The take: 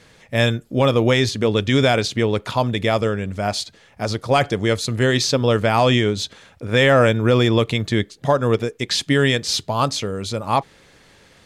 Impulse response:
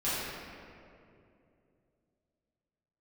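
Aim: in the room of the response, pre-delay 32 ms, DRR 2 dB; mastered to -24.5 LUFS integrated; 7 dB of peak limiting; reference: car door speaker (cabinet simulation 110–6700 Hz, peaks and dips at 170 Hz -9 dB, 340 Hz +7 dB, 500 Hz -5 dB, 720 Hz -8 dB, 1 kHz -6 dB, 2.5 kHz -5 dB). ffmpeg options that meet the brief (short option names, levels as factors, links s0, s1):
-filter_complex "[0:a]alimiter=limit=0.224:level=0:latency=1,asplit=2[s0][s1];[1:a]atrim=start_sample=2205,adelay=32[s2];[s1][s2]afir=irnorm=-1:irlink=0,volume=0.266[s3];[s0][s3]amix=inputs=2:normalize=0,highpass=110,equalizer=f=170:t=q:w=4:g=-9,equalizer=f=340:t=q:w=4:g=7,equalizer=f=500:t=q:w=4:g=-5,equalizer=f=720:t=q:w=4:g=-8,equalizer=f=1000:t=q:w=4:g=-6,equalizer=f=2500:t=q:w=4:g=-5,lowpass=f=6700:w=0.5412,lowpass=f=6700:w=1.3066,volume=0.794"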